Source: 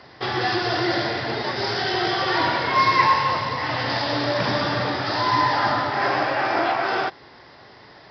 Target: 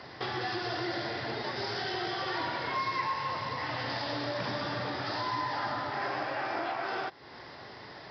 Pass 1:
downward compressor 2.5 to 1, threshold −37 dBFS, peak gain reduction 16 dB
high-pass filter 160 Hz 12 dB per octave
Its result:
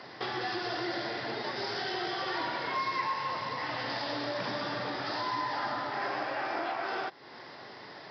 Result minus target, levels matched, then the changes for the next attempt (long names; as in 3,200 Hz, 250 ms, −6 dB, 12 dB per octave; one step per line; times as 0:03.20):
125 Hz band −5.5 dB
change: high-pass filter 51 Hz 12 dB per octave